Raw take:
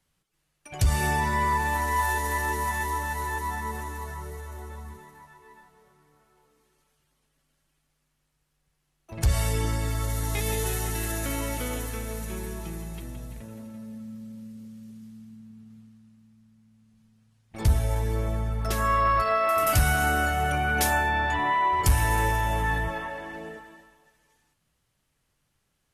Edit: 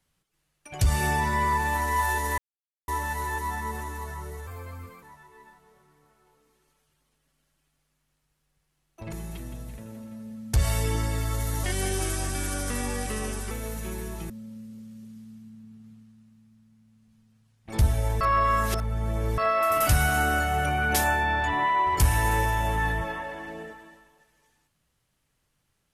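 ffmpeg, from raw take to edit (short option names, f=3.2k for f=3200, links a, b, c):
-filter_complex "[0:a]asplit=12[a][b][c][d][e][f][g][h][i][j][k][l];[a]atrim=end=2.38,asetpts=PTS-STARTPTS,afade=t=out:st=2.376:d=0.004:c=hsin[m];[b]atrim=start=2.38:end=2.88,asetpts=PTS-STARTPTS,volume=0[n];[c]atrim=start=2.88:end=4.474,asetpts=PTS-STARTPTS,afade=t=in:d=0.004:c=hsin[o];[d]atrim=start=4.47:end=5.13,asetpts=PTS-STARTPTS,asetrate=52479,aresample=44100[p];[e]atrim=start=5.126:end=9.232[q];[f]atrim=start=12.748:end=14.162[r];[g]atrim=start=9.228:end=10.334[s];[h]atrim=start=10.33:end=11.96,asetpts=PTS-STARTPTS,asetrate=38367,aresample=44100,atrim=end_sample=82624,asetpts=PTS-STARTPTS[t];[i]atrim=start=11.956:end=12.752[u];[j]atrim=start=14.158:end=18.072[v];[k]atrim=start=18.068:end=19.242,asetpts=PTS-STARTPTS,areverse[w];[l]atrim=start=19.238[x];[m][n][o]concat=n=3:v=0:a=1[y];[y][p]acrossfade=d=0.004:c1=hsin:c2=hsin[z];[z][q]acrossfade=d=0.004:c1=hsin:c2=hsin[aa];[aa][r]acrossfade=d=0.004:c1=hsin:c2=hsin[ab];[ab][s]acrossfade=d=0.004:c1=hsin:c2=hsin[ac];[ac][t]acrossfade=d=0.004:c1=hsin:c2=hsin[ad];[ad][u]acrossfade=d=0.004:c1=hsin:c2=hsin[ae];[ae][v]acrossfade=d=0.004:c1=hsin:c2=hsin[af];[af][w]acrossfade=d=0.004:c1=hsin:c2=hsin[ag];[ag][x]acrossfade=d=0.004:c1=hsin:c2=hsin"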